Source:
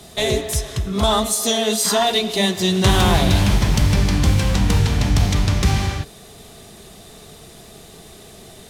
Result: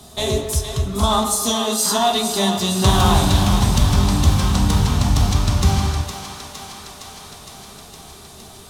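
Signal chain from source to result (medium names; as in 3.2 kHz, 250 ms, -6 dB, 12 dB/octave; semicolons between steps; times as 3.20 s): graphic EQ 500/1000/2000 Hz -6/+5/-9 dB; thinning echo 462 ms, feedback 75%, high-pass 430 Hz, level -8.5 dB; on a send at -5 dB: reverberation RT60 1.1 s, pre-delay 6 ms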